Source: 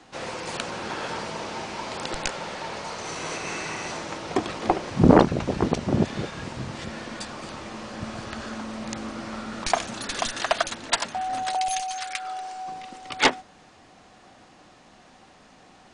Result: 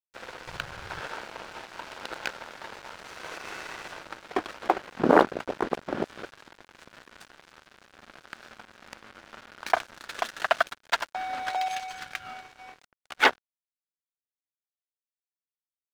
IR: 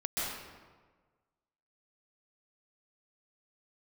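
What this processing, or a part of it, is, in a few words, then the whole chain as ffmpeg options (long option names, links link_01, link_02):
pocket radio on a weak battery: -filter_complex "[0:a]highpass=360,lowpass=3500,aeval=exprs='sgn(val(0))*max(abs(val(0))-0.0188,0)':channel_layout=same,equalizer=frequency=1500:width_type=o:width=0.36:gain=6.5,asettb=1/sr,asplit=3[link_01][link_02][link_03];[link_01]atrim=end=0.474[link_04];[link_02]atrim=start=0.47:end=1.01,asetpts=PTS-STARTPTS,afade=type=in:duration=0.004:curve=qsin,afade=type=out:start_time=0.536:duration=0.004:curve=qsin,lowshelf=frequency=180:width_type=q:width=1.5:gain=12.5[link_05];[link_03]atrim=start=1.006[link_06];[link_04][link_05]acrossfade=duration=0.004:curve1=hsin:curve2=qsin[link_07];[link_07][link_06]acrossfade=duration=0.004:curve1=qsin:curve2=hsin"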